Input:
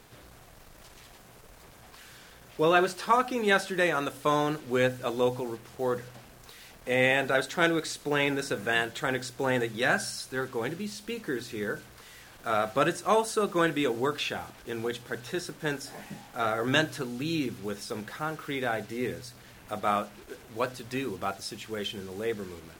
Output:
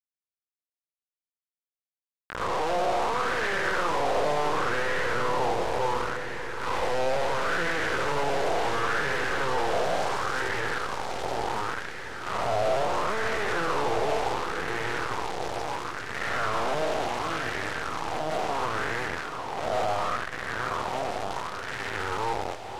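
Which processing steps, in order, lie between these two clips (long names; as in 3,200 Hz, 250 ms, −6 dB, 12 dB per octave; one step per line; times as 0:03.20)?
spectrum smeared in time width 510 ms
high-pass filter 390 Hz 24 dB per octave
tilt shelving filter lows +4 dB, about 780 Hz
half-wave rectification
formants moved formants −4 semitones
log-companded quantiser 2 bits
high-frequency loss of the air 65 metres
on a send: feedback delay with all-pass diffusion 835 ms, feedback 43%, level −6 dB
on the sum: auto-filter bell 0.71 Hz 670–1,800 Hz +12 dB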